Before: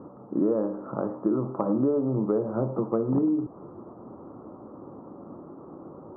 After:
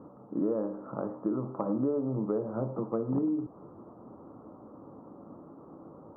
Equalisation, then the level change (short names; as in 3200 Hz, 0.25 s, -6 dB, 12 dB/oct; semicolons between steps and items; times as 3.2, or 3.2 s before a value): notch 370 Hz, Q 12; -5.0 dB